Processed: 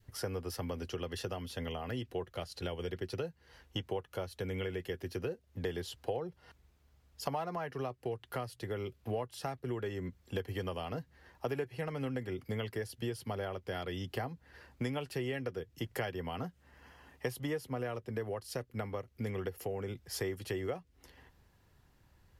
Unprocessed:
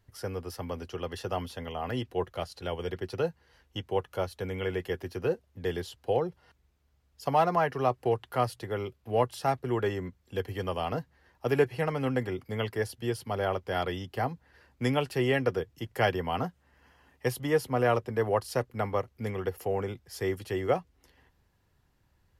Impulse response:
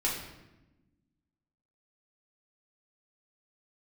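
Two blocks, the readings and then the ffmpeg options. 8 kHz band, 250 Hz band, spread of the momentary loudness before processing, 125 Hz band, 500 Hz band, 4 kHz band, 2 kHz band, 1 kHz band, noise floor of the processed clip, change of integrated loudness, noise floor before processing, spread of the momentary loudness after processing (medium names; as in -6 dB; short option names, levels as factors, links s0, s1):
-2.5 dB, -6.0 dB, 10 LU, -6.0 dB, -9.0 dB, -4.5 dB, -8.0 dB, -12.0 dB, -68 dBFS, -8.0 dB, -70 dBFS, 5 LU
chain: -af "acompressor=threshold=0.0141:ratio=6,adynamicequalizer=threshold=0.00126:dfrequency=910:dqfactor=1.1:tfrequency=910:tqfactor=1.1:attack=5:release=100:ratio=0.375:range=3.5:mode=cutabove:tftype=bell,volume=1.5"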